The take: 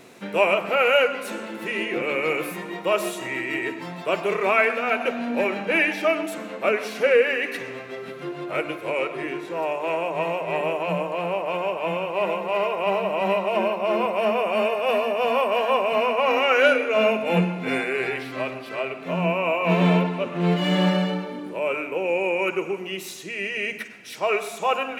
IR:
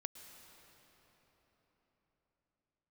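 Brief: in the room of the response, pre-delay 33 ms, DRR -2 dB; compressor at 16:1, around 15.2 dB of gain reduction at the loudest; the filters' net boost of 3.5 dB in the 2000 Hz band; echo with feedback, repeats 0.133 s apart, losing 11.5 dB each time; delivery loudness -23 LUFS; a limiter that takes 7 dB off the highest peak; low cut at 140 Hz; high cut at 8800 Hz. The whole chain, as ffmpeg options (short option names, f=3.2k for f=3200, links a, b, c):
-filter_complex "[0:a]highpass=140,lowpass=8.8k,equalizer=f=2k:t=o:g=4.5,acompressor=threshold=-27dB:ratio=16,alimiter=limit=-23.5dB:level=0:latency=1,aecho=1:1:133|266|399:0.266|0.0718|0.0194,asplit=2[a][b];[1:a]atrim=start_sample=2205,adelay=33[c];[b][c]afir=irnorm=-1:irlink=0,volume=5dB[d];[a][d]amix=inputs=2:normalize=0,volume=5dB"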